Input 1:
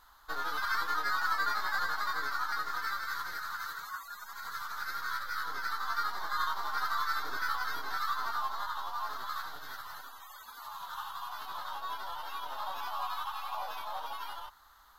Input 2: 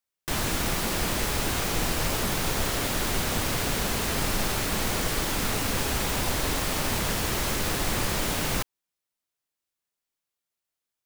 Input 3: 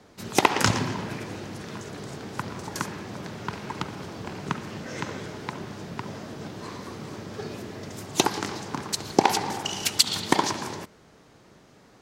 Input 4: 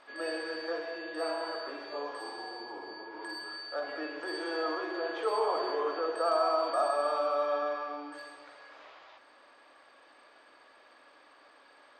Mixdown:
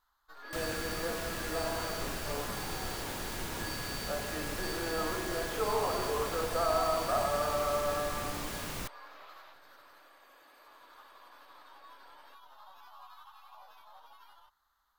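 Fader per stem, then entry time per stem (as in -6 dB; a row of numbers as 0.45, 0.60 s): -16.5 dB, -12.0 dB, off, -2.0 dB; 0.00 s, 0.25 s, off, 0.35 s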